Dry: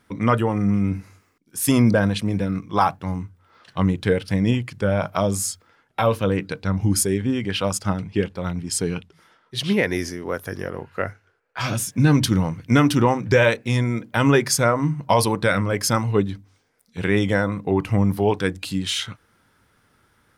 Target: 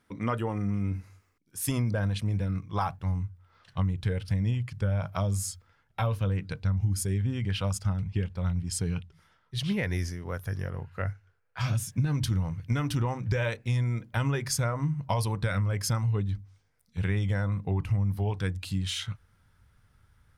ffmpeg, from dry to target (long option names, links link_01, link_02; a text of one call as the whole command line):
ffmpeg -i in.wav -af "asubboost=boost=9.5:cutoff=99,acompressor=threshold=-15dB:ratio=6,volume=-8.5dB" out.wav